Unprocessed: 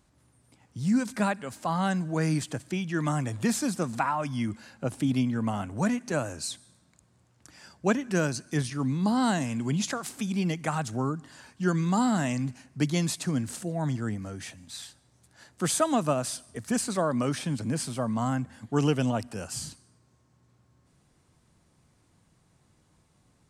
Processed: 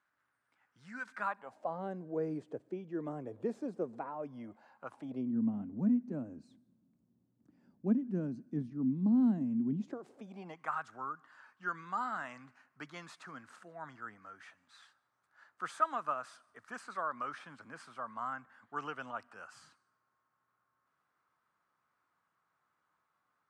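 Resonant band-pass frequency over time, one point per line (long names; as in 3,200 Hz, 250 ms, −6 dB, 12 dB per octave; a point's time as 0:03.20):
resonant band-pass, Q 3.5
0:01.14 1,500 Hz
0:01.82 440 Hz
0:04.28 440 Hz
0:04.89 1,200 Hz
0:05.37 240 Hz
0:09.70 240 Hz
0:10.73 1,300 Hz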